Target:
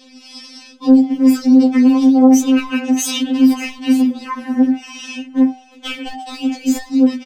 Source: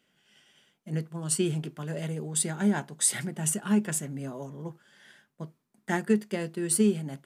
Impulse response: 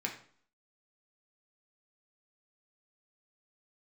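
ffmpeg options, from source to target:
-filter_complex "[0:a]lowpass=frequency=4200:width=0.5412,lowpass=frequency=4200:width=1.3066,equalizer=frequency=71:width_type=o:width=0.95:gain=12.5,bandreject=frequency=1900:width=25,bandreject=frequency=91.36:width_type=h:width=4,bandreject=frequency=182.72:width_type=h:width=4,bandreject=frequency=274.08:width_type=h:width=4,bandreject=frequency=365.44:width_type=h:width=4,bandreject=frequency=456.8:width_type=h:width=4,bandreject=frequency=548.16:width_type=h:width=4,bandreject=frequency=639.52:width_type=h:width=4,bandreject=frequency=730.88:width_type=h:width=4,bandreject=frequency=822.24:width_type=h:width=4,bandreject=frequency=913.6:width_type=h:width=4,bandreject=frequency=1004.96:width_type=h:width=4,bandreject=frequency=1096.32:width_type=h:width=4,bandreject=frequency=1187.68:width_type=h:width=4,bandreject=frequency=1279.04:width_type=h:width=4,bandreject=frequency=1370.4:width_type=h:width=4,bandreject=frequency=1461.76:width_type=h:width=4,bandreject=frequency=1553.12:width_type=h:width=4,bandreject=frequency=1644.48:width_type=h:width=4,bandreject=frequency=1735.84:width_type=h:width=4,bandreject=frequency=1827.2:width_type=h:width=4,bandreject=frequency=1918.56:width_type=h:width=4,bandreject=frequency=2009.92:width_type=h:width=4,bandreject=frequency=2101.28:width_type=h:width=4,bandreject=frequency=2192.64:width_type=h:width=4,acompressor=threshold=-38dB:ratio=4,asetrate=74167,aresample=44100,atempo=0.594604,asoftclip=type=hard:threshold=-33dB,aecho=1:1:585:0.0794,asplit=2[link_01][link_02];[1:a]atrim=start_sample=2205,atrim=end_sample=3528,asetrate=61740,aresample=44100[link_03];[link_02][link_03]afir=irnorm=-1:irlink=0,volume=-9.5dB[link_04];[link_01][link_04]amix=inputs=2:normalize=0,alimiter=level_in=35.5dB:limit=-1dB:release=50:level=0:latency=1,afftfilt=real='re*3.46*eq(mod(b,12),0)':imag='im*3.46*eq(mod(b,12),0)':win_size=2048:overlap=0.75,volume=-9dB"

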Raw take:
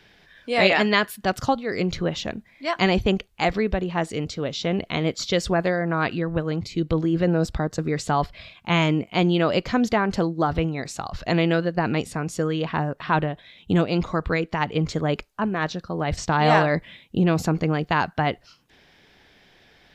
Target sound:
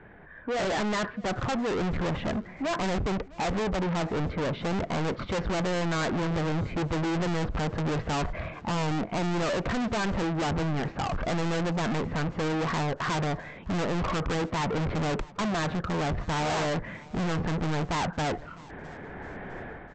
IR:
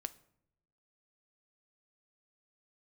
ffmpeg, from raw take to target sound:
-af "lowpass=frequency=1600:width=0.5412,lowpass=frequency=1600:width=1.3066,dynaudnorm=framelen=560:gausssize=3:maxgain=14.5dB,aresample=16000,asoftclip=type=tanh:threshold=-34.5dB,aresample=44100,aecho=1:1:656|1312|1968:0.0794|0.0365|0.0168,volume=7.5dB"

